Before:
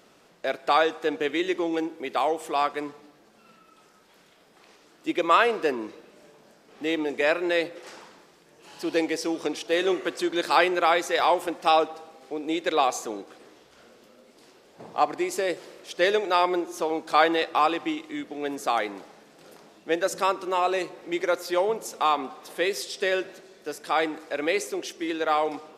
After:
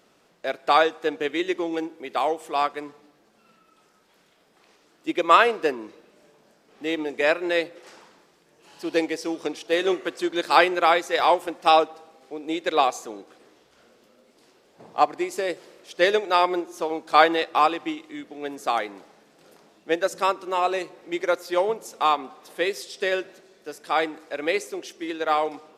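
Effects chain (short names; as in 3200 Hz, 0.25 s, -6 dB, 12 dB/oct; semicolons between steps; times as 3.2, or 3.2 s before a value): upward expander 1.5:1, over -32 dBFS; gain +4.5 dB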